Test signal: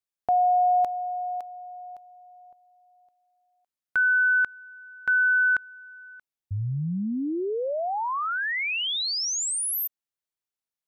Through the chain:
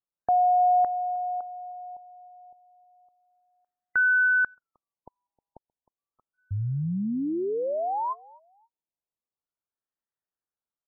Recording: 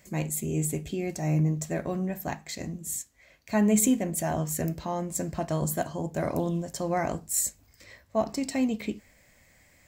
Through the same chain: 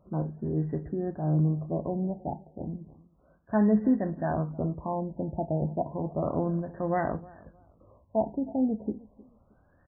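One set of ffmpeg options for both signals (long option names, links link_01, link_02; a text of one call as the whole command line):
ffmpeg -i in.wav -filter_complex "[0:a]asplit=2[link_01][link_02];[link_02]adelay=311,lowpass=frequency=2000:poles=1,volume=-22dB,asplit=2[link_03][link_04];[link_04]adelay=311,lowpass=frequency=2000:poles=1,volume=0.28[link_05];[link_03][link_05]amix=inputs=2:normalize=0[link_06];[link_01][link_06]amix=inputs=2:normalize=0,afftfilt=real='re*lt(b*sr/1024,920*pow(2000/920,0.5+0.5*sin(2*PI*0.32*pts/sr)))':imag='im*lt(b*sr/1024,920*pow(2000/920,0.5+0.5*sin(2*PI*0.32*pts/sr)))':win_size=1024:overlap=0.75" out.wav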